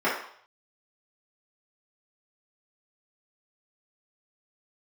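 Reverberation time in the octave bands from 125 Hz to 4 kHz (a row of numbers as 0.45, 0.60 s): 0.50, 0.45, 0.55, 0.65, 0.55, 0.60 s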